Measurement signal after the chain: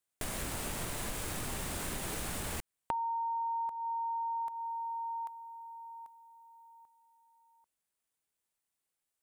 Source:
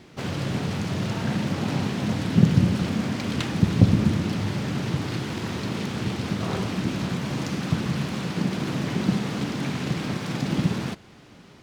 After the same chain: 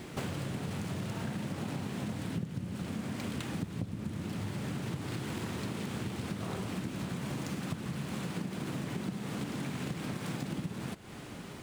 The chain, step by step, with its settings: median filter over 3 samples; resonant high shelf 7000 Hz +7 dB, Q 1.5; compressor 12:1, threshold -38 dBFS; gain +4.5 dB

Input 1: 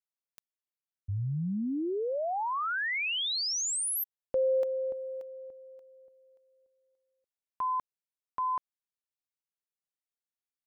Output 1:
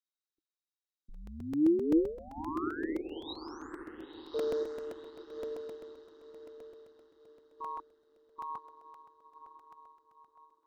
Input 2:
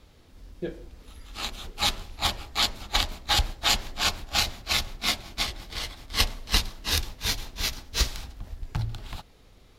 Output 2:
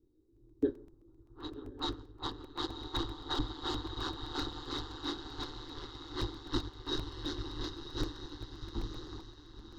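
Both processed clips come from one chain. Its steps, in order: low-pass opened by the level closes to 320 Hz, open at -26 dBFS; high shelf 8600 Hz -6 dB; diffused feedback echo 1.021 s, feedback 49%, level -5.5 dB; ring modulator 76 Hz; added noise violet -65 dBFS; hard clip -22.5 dBFS; air absorption 180 m; fixed phaser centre 640 Hz, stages 6; small resonant body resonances 320/3800 Hz, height 16 dB, ringing for 40 ms; crackling interface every 0.13 s, samples 128, repeat, from 0.36; upward expander 1.5:1, over -49 dBFS

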